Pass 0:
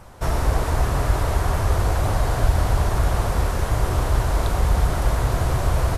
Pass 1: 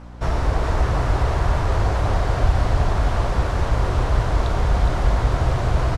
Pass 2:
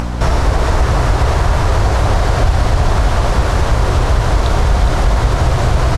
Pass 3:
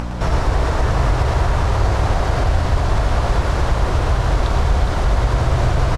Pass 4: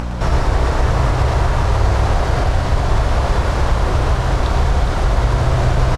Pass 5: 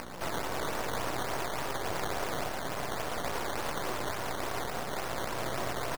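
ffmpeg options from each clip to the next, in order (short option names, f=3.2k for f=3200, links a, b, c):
-af "aeval=exprs='val(0)+0.0141*(sin(2*PI*60*n/s)+sin(2*PI*2*60*n/s)/2+sin(2*PI*3*60*n/s)/3+sin(2*PI*4*60*n/s)/4+sin(2*PI*5*60*n/s)/5)':c=same,lowpass=5.2k,aecho=1:1:414:0.501"
-filter_complex "[0:a]asplit=2[a][b];[b]alimiter=limit=-12.5dB:level=0:latency=1,volume=3dB[c];[a][c]amix=inputs=2:normalize=0,highshelf=f=3.9k:g=6.5,acompressor=mode=upward:threshold=-7dB:ratio=2.5,volume=-1dB"
-filter_complex "[0:a]highshelf=f=6.8k:g=-5.5,asoftclip=type=hard:threshold=-4dB,asplit=2[a][b];[b]aecho=0:1:111:0.531[c];[a][c]amix=inputs=2:normalize=0,volume=-5dB"
-filter_complex "[0:a]asplit=2[a][b];[b]adelay=32,volume=-10.5dB[c];[a][c]amix=inputs=2:normalize=0,volume=1dB"
-af "highpass=280,acrusher=samples=12:mix=1:aa=0.000001:lfo=1:lforange=12:lforate=3.5,aeval=exprs='max(val(0),0)':c=same,volume=-7.5dB"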